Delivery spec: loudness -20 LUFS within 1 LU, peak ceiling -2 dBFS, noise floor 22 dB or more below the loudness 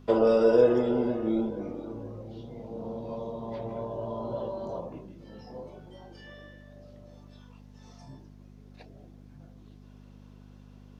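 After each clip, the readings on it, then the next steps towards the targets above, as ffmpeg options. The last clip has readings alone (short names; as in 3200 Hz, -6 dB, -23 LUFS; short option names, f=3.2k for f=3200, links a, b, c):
hum 50 Hz; harmonics up to 250 Hz; hum level -49 dBFS; loudness -28.5 LUFS; peak -9.5 dBFS; loudness target -20.0 LUFS
-> -af "bandreject=f=50:t=h:w=4,bandreject=f=100:t=h:w=4,bandreject=f=150:t=h:w=4,bandreject=f=200:t=h:w=4,bandreject=f=250:t=h:w=4"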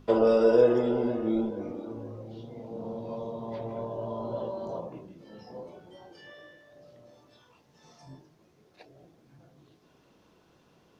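hum none; loudness -28.5 LUFS; peak -9.5 dBFS; loudness target -20.0 LUFS
-> -af "volume=8.5dB,alimiter=limit=-2dB:level=0:latency=1"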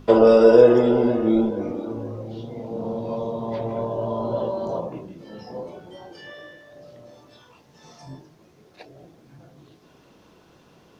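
loudness -20.0 LUFS; peak -2.0 dBFS; noise floor -55 dBFS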